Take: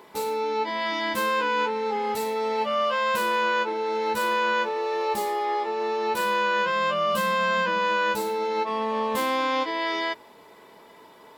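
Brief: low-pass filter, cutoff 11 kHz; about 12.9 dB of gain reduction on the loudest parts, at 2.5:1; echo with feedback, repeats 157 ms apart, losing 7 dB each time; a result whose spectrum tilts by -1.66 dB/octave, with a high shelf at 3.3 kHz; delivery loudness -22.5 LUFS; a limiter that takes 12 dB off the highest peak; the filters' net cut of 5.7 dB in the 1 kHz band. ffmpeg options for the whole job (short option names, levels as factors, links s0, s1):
-af "lowpass=11000,equalizer=f=1000:t=o:g=-5.5,highshelf=f=3300:g=-8.5,acompressor=threshold=0.00562:ratio=2.5,alimiter=level_in=7.94:limit=0.0631:level=0:latency=1,volume=0.126,aecho=1:1:157|314|471|628|785:0.447|0.201|0.0905|0.0407|0.0183,volume=18.8"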